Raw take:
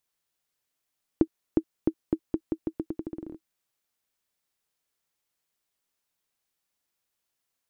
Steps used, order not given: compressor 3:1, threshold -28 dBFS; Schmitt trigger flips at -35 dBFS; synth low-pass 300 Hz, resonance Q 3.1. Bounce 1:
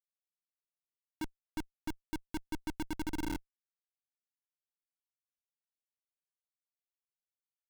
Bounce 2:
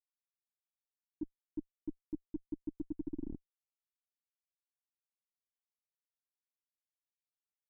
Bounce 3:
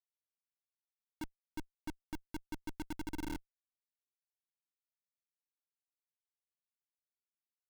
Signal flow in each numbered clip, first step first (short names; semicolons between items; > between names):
compressor > synth low-pass > Schmitt trigger; compressor > Schmitt trigger > synth low-pass; synth low-pass > compressor > Schmitt trigger